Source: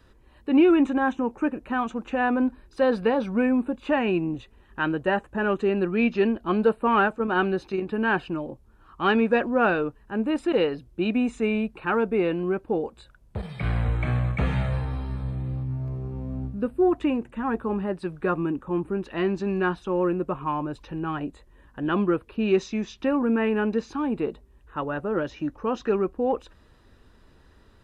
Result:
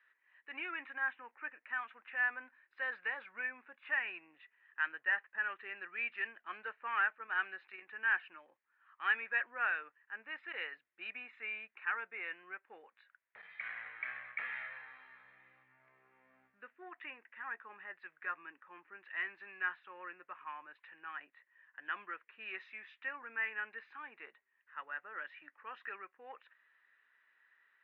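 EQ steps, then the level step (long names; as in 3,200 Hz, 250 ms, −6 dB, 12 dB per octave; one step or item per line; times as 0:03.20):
four-pole ladder band-pass 2,100 Hz, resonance 65%
high-frequency loss of the air 490 metres
+6.5 dB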